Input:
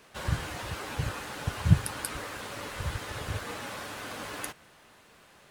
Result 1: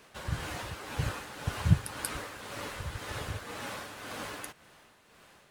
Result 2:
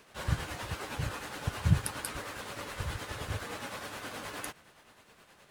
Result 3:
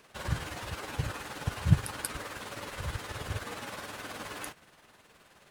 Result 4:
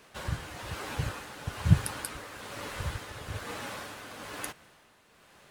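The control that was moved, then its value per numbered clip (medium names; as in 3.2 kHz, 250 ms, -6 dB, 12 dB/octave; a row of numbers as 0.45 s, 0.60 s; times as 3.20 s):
tremolo, rate: 1.9 Hz, 9.6 Hz, 19 Hz, 1.1 Hz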